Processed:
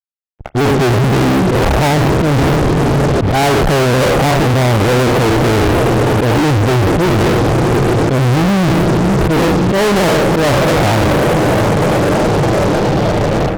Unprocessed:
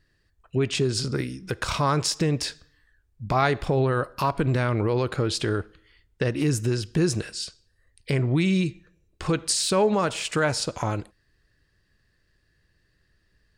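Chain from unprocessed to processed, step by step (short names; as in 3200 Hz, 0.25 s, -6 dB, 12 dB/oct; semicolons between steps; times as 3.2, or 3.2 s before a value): spectral trails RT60 0.45 s; steep low-pass 860 Hz 96 dB/oct; reverse; compressor 8:1, threshold -32 dBFS, peak gain reduction 15.5 dB; reverse; diffused feedback echo 0.589 s, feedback 75%, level -14.5 dB; AGC gain up to 10 dB; in parallel at -2 dB: limiter -20 dBFS, peak gain reduction 7 dB; on the sum: auto swell 0.15 s; fuzz box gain 47 dB, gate -51 dBFS; spring tank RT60 2.2 s, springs 41 ms, DRR 19.5 dB; shaped vibrato saw down 3.3 Hz, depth 100 cents; gain +2.5 dB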